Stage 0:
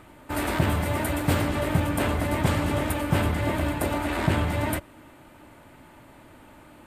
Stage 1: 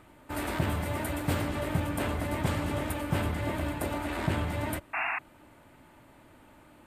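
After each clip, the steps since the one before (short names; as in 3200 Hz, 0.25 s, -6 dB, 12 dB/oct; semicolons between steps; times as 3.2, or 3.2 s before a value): painted sound noise, 4.93–5.19, 640–2800 Hz -25 dBFS; gain -6 dB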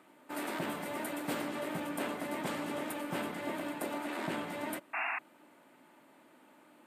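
HPF 200 Hz 24 dB/oct; gain -4 dB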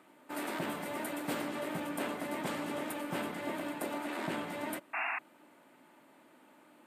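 nothing audible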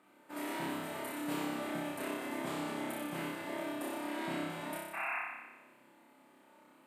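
flutter echo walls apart 5.2 m, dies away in 1.1 s; gain -6.5 dB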